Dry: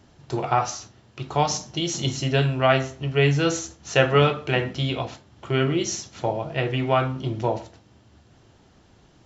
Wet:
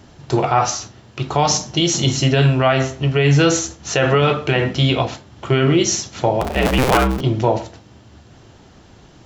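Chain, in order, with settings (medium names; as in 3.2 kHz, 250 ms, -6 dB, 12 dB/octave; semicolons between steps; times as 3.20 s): 6.41–7.21 s: cycle switcher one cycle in 2, inverted; loudness maximiser +13.5 dB; trim -4 dB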